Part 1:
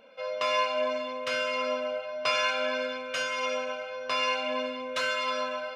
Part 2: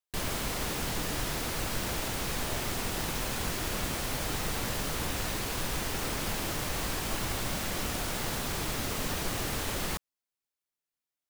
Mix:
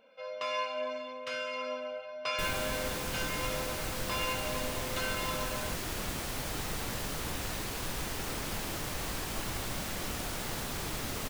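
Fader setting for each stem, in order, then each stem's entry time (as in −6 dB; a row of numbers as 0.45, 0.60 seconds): −7.0, −3.5 decibels; 0.00, 2.25 seconds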